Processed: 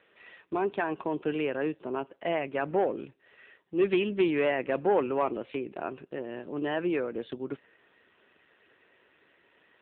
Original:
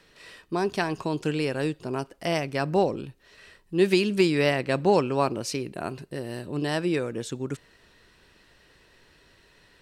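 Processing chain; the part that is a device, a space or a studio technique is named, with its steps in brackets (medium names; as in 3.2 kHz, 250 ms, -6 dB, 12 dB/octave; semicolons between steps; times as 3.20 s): telephone (band-pass 270–3400 Hz; saturation -16.5 dBFS, distortion -15 dB; AMR-NB 7.4 kbps 8 kHz)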